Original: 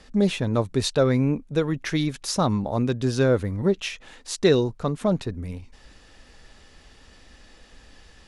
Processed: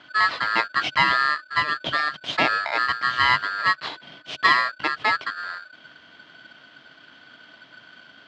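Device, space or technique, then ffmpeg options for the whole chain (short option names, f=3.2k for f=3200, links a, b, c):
ring modulator pedal into a guitar cabinet: -af "aeval=exprs='val(0)*sgn(sin(2*PI*1500*n/s))':c=same,highpass=76,equalizer=f=140:t=q:w=4:g=7,equalizer=f=300:t=q:w=4:g=6,equalizer=f=640:t=q:w=4:g=8,equalizer=f=3.1k:t=q:w=4:g=8,lowpass=f=4.1k:w=0.5412,lowpass=f=4.1k:w=1.3066"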